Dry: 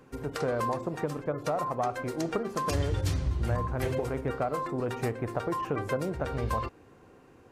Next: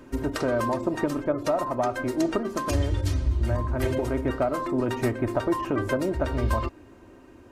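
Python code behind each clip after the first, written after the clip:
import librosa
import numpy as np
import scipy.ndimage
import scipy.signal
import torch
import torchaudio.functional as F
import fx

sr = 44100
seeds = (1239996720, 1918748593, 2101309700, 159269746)

y = fx.low_shelf(x, sr, hz=340.0, db=4.5)
y = y + 0.64 * np.pad(y, (int(3.2 * sr / 1000.0), 0))[:len(y)]
y = fx.rider(y, sr, range_db=4, speed_s=0.5)
y = F.gain(torch.from_numpy(y), 2.0).numpy()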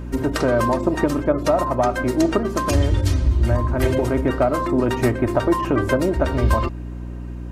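y = fx.add_hum(x, sr, base_hz=60, snr_db=11)
y = F.gain(torch.from_numpy(y), 6.5).numpy()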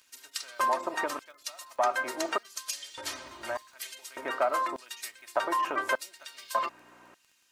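y = fx.quant_float(x, sr, bits=8)
y = fx.filter_lfo_highpass(y, sr, shape='square', hz=0.84, low_hz=900.0, high_hz=4000.0, q=0.95)
y = fx.dmg_crackle(y, sr, seeds[0], per_s=18.0, level_db=-42.0)
y = F.gain(torch.from_numpy(y), -3.5).numpy()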